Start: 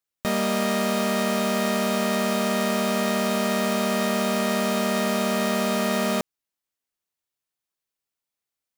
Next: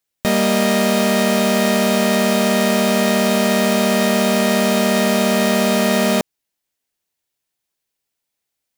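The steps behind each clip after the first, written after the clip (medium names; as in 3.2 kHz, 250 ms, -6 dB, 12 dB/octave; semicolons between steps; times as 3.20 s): peaking EQ 1.2 kHz -5.5 dB 0.43 oct; trim +8 dB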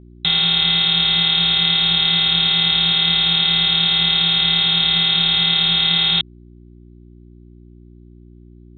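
frequency inversion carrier 3.9 kHz; fifteen-band graphic EQ 160 Hz +7 dB, 630 Hz -6 dB, 1.6 kHz -5 dB; mains buzz 60 Hz, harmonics 6, -43 dBFS -4 dB/octave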